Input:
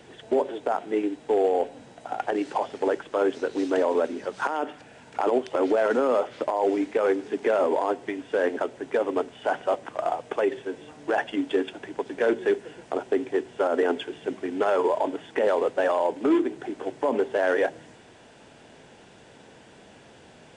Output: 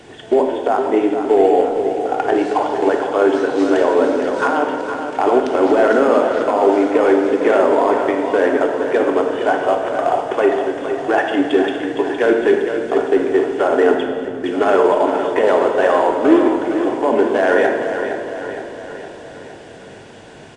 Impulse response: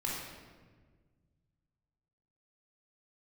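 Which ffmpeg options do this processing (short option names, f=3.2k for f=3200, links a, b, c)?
-filter_complex "[0:a]aecho=1:1:463|926|1389|1852|2315|2778|3241:0.376|0.21|0.118|0.066|0.037|0.0207|0.0116,asettb=1/sr,asplit=3[a][b][c];[a]atrim=end=13.944[d];[b]atrim=start=13.94:end=14.44,asetpts=PTS-STARTPTS,afade=t=in:d=0.004:c=qsin,afade=t=out:st=0.496:d=0.004:c=qsin,acrossover=split=210[e][f];[f]acompressor=threshold=-37dB:ratio=6[g];[e][g]amix=inputs=2:normalize=0[h];[c]atrim=start=14.436[i];[d][h]acrossfade=d=0.004:c1=hsin:c2=qsin[j];[j][i]acrossfade=d=0.004:c1=qsin:c2=hsin,asplit=2[k][l];[1:a]atrim=start_sample=2205,asetrate=36603,aresample=44100[m];[l][m]afir=irnorm=-1:irlink=0,volume=-4dB[n];[k][n]amix=inputs=2:normalize=0,volume=4dB"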